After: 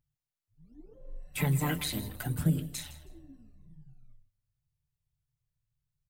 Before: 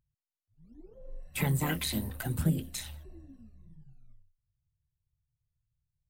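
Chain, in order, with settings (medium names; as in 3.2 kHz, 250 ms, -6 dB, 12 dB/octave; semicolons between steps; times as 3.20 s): comb 6.8 ms, depth 40%; on a send: feedback delay 159 ms, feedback 21%, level -16.5 dB; on the sum: trim -1.5 dB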